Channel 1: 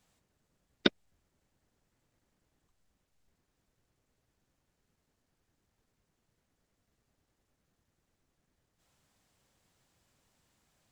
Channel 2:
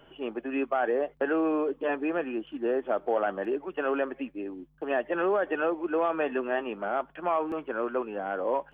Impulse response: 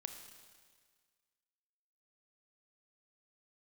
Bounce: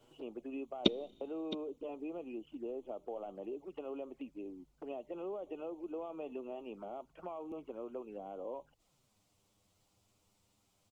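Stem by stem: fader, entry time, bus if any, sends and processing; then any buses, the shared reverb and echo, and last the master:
+1.5 dB, 0.00 s, send −15 dB, echo send −13 dB, brickwall limiter −9.5 dBFS, peak gain reduction 3.5 dB
−6.0 dB, 0.00 s, no send, no echo send, parametric band 2,500 Hz −3 dB 2.1 octaves; downward compressor 2.5 to 1, threshold −35 dBFS, peak gain reduction 9 dB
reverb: on, RT60 1.7 s, pre-delay 26 ms
echo: single-tap delay 665 ms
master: parametric band 1,700 Hz −13.5 dB 0.34 octaves; flanger swept by the level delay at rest 11.5 ms, full sweep at −40 dBFS

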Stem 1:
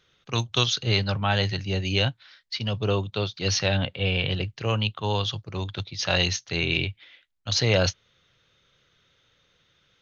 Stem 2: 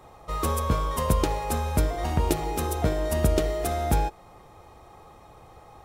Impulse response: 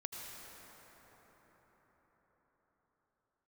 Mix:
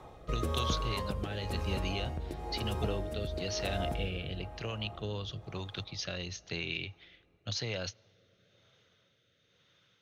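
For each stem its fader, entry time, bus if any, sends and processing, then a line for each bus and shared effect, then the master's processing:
−3.0 dB, 0.00 s, send −23 dB, downward compressor 6 to 1, threshold −29 dBFS, peak gain reduction 12.5 dB; high-pass filter 89 Hz
+1.5 dB, 0.00 s, send −8.5 dB, downward compressor 5 to 1, threshold −29 dBFS, peak gain reduction 11.5 dB; high-shelf EQ 5,000 Hz −8.5 dB; automatic ducking −12 dB, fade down 1.75 s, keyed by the first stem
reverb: on, RT60 5.7 s, pre-delay 73 ms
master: rotating-speaker cabinet horn 1 Hz

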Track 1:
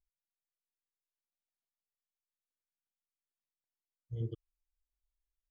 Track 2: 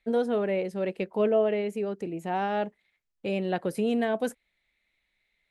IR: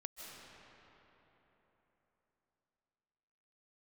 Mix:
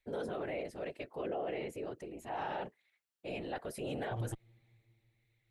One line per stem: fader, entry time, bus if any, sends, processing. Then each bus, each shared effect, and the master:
+2.0 dB, 0.00 s, send −23 dB, lower of the sound and its delayed copy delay 0.68 ms
−7.5 dB, 0.00 s, no send, high-pass filter 470 Hz 6 dB per octave; random phases in short frames; transient designer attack −2 dB, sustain +4 dB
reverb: on, RT60 3.9 s, pre-delay 115 ms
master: brickwall limiter −29.5 dBFS, peak gain reduction 6.5 dB

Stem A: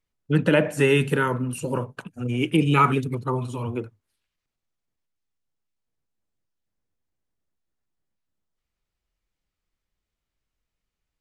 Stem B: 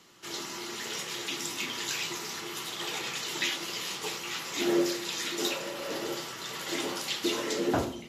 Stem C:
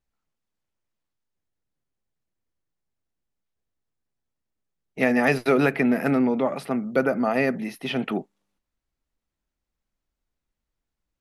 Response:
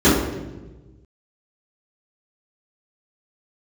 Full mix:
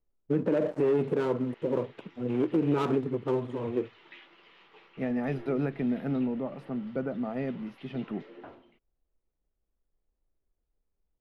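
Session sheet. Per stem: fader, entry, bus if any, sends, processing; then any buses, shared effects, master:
+2.5 dB, 0.00 s, no send, gap after every zero crossing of 0.24 ms; resonant band-pass 420 Hz, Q 1.3
−17.5 dB, 0.70 s, no send, low-pass filter 2,800 Hz 24 dB per octave; low-shelf EQ 200 Hz −11 dB
−15.5 dB, 0.00 s, no send, spectral tilt −4 dB per octave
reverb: not used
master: brickwall limiter −17.5 dBFS, peak gain reduction 8.5 dB

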